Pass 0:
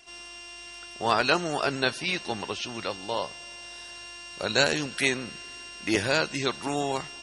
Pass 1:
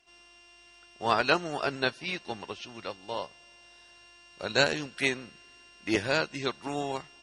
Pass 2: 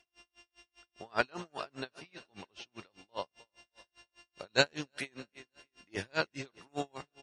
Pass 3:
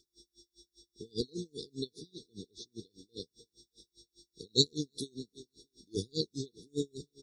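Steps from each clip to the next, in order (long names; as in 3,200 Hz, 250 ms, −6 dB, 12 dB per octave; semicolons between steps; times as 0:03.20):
high-shelf EQ 7,800 Hz −11 dB; expander for the loud parts 1.5 to 1, over −42 dBFS
repeating echo 310 ms, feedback 50%, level −22 dB; tremolo with a sine in dB 5 Hz, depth 39 dB
linear-phase brick-wall band-stop 490–3,400 Hz; level +5 dB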